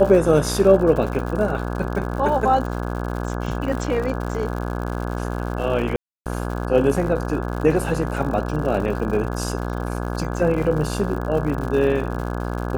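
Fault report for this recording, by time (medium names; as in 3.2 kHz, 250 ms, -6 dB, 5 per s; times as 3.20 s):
buzz 60 Hz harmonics 28 -26 dBFS
crackle 120 per s -29 dBFS
5.96–6.26 s: dropout 298 ms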